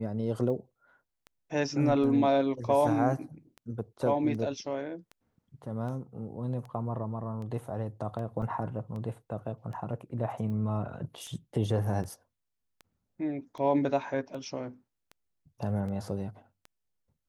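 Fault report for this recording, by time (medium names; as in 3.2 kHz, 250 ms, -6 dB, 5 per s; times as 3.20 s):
tick 78 rpm -31 dBFS
8.42 s: dropout 3.3 ms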